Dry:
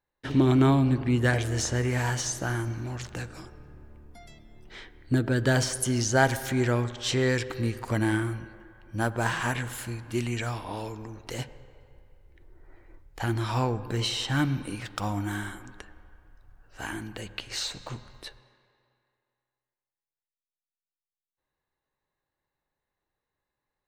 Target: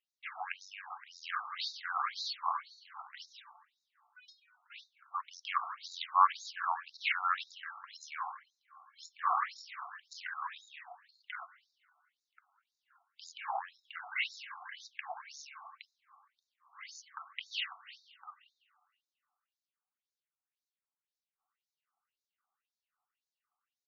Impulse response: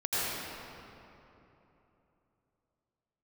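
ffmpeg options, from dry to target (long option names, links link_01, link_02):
-filter_complex "[0:a]asetrate=31183,aresample=44100,atempo=1.41421,acrossover=split=2800[link_01][link_02];[link_02]acompressor=threshold=-45dB:ratio=4:attack=1:release=60[link_03];[link_01][link_03]amix=inputs=2:normalize=0,afftfilt=real='re*between(b*sr/1024,960*pow(5200/960,0.5+0.5*sin(2*PI*1.9*pts/sr))/1.41,960*pow(5200/960,0.5+0.5*sin(2*PI*1.9*pts/sr))*1.41)':imag='im*between(b*sr/1024,960*pow(5200/960,0.5+0.5*sin(2*PI*1.9*pts/sr))/1.41,960*pow(5200/960,0.5+0.5*sin(2*PI*1.9*pts/sr))*1.41)':win_size=1024:overlap=0.75,volume=3.5dB"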